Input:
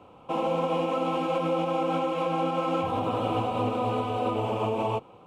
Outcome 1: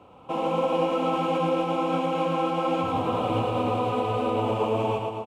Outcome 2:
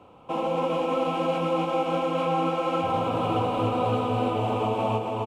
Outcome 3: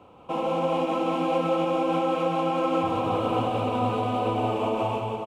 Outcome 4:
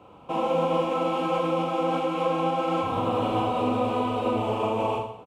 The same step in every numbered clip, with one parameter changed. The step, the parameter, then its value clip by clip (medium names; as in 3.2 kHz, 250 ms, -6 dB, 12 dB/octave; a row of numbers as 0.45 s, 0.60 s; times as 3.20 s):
reverse bouncing-ball echo, first gap: 110 ms, 270 ms, 180 ms, 40 ms